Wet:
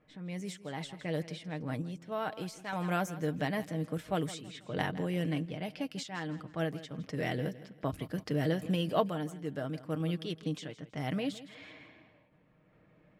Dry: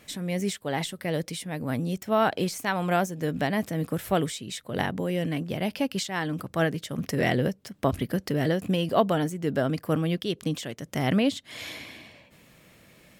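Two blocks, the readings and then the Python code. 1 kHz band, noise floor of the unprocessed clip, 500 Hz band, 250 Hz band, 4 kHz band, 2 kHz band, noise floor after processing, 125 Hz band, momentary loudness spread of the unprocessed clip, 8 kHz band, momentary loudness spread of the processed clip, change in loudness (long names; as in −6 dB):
−9.0 dB, −57 dBFS, −8.5 dB, −8.0 dB, −9.0 dB, −9.0 dB, −65 dBFS, −6.5 dB, 9 LU, −12.0 dB, 9 LU, −8.0 dB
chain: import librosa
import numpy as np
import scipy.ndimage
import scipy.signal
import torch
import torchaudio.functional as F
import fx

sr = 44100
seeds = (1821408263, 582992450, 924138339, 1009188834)

p1 = fx.env_lowpass(x, sr, base_hz=1300.0, full_db=-22.5)
p2 = p1 + 0.4 * np.pad(p1, (int(6.5 * sr / 1000.0), 0))[:len(p1)]
p3 = p2 + fx.echo_feedback(p2, sr, ms=163, feedback_pct=33, wet_db=-16, dry=0)
p4 = fx.tremolo_random(p3, sr, seeds[0], hz=1.1, depth_pct=55)
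y = p4 * 10.0 ** (-6.0 / 20.0)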